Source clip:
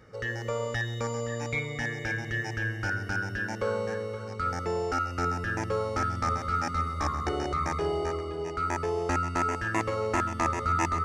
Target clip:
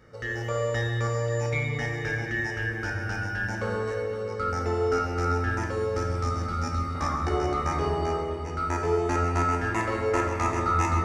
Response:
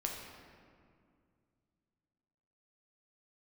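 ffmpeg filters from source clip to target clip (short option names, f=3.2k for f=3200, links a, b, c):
-filter_complex "[1:a]atrim=start_sample=2205[a];[0:a][a]afir=irnorm=-1:irlink=0,asettb=1/sr,asplit=3[b][c][d];[b]atrim=end=5.664[e];[c]atrim=start=5.66:end=6.95,asetpts=PTS-STARTPTS,afade=t=in:d=0.004:c=qsin,afade=t=out:st=1.286:d=0.004:c=qsin,acrossover=split=450|3000[f][g][h];[g]acompressor=threshold=-37dB:ratio=2[i];[f][i][h]amix=inputs=3:normalize=0[j];[d]atrim=start=6.946[k];[e][j]acrossfade=d=0.004:c1=hsin:c2=qsin[l];[l][k]acrossfade=d=0.004:c1=qsin:c2=hsin"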